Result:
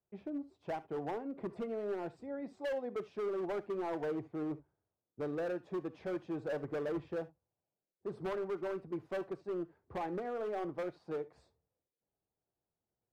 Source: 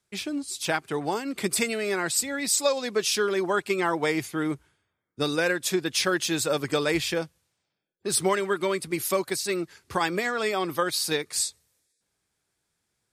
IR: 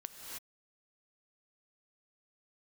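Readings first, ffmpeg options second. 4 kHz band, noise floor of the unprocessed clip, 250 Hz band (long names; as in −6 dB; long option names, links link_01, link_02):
−30.0 dB, −79 dBFS, −10.5 dB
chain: -filter_complex "[0:a]lowpass=frequency=700:width_type=q:width=1.6,volume=23dB,asoftclip=hard,volume=-23dB[link_01];[1:a]atrim=start_sample=2205,atrim=end_sample=3528[link_02];[link_01][link_02]afir=irnorm=-1:irlink=0,volume=-5.5dB"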